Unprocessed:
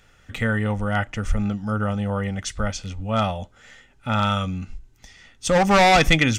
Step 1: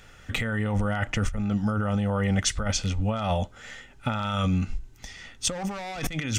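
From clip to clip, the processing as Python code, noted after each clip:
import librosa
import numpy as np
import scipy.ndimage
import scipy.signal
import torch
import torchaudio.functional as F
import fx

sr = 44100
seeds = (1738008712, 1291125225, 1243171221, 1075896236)

y = fx.over_compress(x, sr, threshold_db=-27.0, ratio=-1.0)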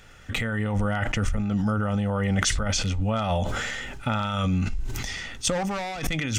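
y = fx.sustainer(x, sr, db_per_s=23.0)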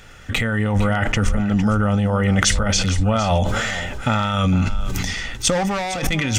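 y = x + 10.0 ** (-13.0 / 20.0) * np.pad(x, (int(458 * sr / 1000.0), 0))[:len(x)]
y = y * 10.0 ** (6.5 / 20.0)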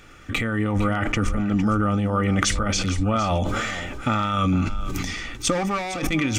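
y = fx.small_body(x, sr, hz=(310.0, 1200.0, 2300.0), ring_ms=35, db=11)
y = y * 10.0 ** (-5.5 / 20.0)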